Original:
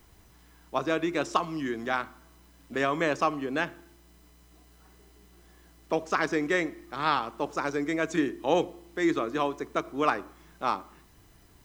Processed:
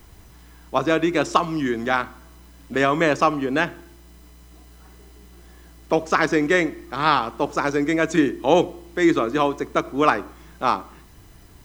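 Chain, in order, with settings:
low-shelf EQ 160 Hz +4 dB
level +7.5 dB

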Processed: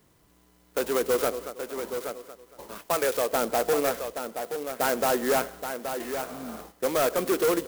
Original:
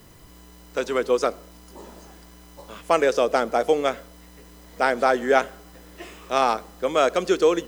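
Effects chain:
0:02.78–0:03.33: low-shelf EQ 450 Hz −10 dB
0:06.21–0:06.56: healed spectral selection 260–9,900 Hz after
noise gate −43 dBFS, range −11 dB
0:00.87–0:01.31: delay throw 230 ms, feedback 35%, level −15 dB
hard clipping −19.5 dBFS, distortion −8 dB
low-shelf EQ 74 Hz −9.5 dB
single-tap delay 825 ms −8 dB
converter with an unsteady clock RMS 0.066 ms

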